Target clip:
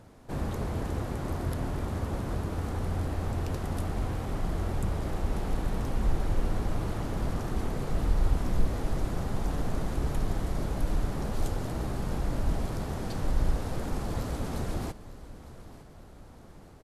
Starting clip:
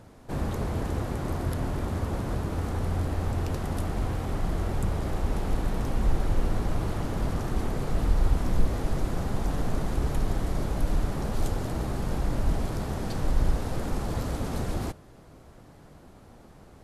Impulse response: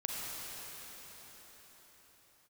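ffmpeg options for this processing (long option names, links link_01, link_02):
-af "aecho=1:1:904|1808|2712|3616:0.141|0.072|0.0367|0.0187,volume=-2.5dB"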